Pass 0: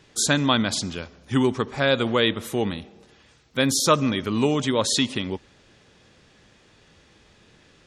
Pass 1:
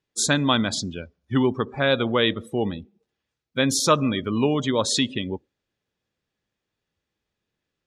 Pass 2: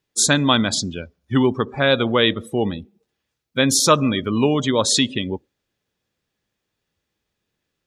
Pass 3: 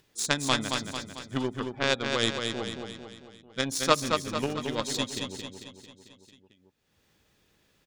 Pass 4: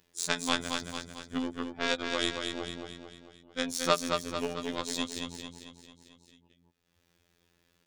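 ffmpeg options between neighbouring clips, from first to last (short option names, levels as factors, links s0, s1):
-af "afftdn=nr=27:nf=-33"
-af "highshelf=f=6200:g=5,volume=1.5"
-filter_complex "[0:a]aeval=exprs='0.891*(cos(1*acos(clip(val(0)/0.891,-1,1)))-cos(1*PI/2))+0.251*(cos(3*acos(clip(val(0)/0.891,-1,1)))-cos(3*PI/2))':c=same,asplit=2[s0][s1];[s1]aecho=0:1:223|446|669|892|1115|1338:0.562|0.287|0.146|0.0746|0.038|0.0194[s2];[s0][s2]amix=inputs=2:normalize=0,acompressor=mode=upward:threshold=0.00708:ratio=2.5,volume=0.794"
-af "afftfilt=real='hypot(re,im)*cos(PI*b)':imag='0':win_size=2048:overlap=0.75"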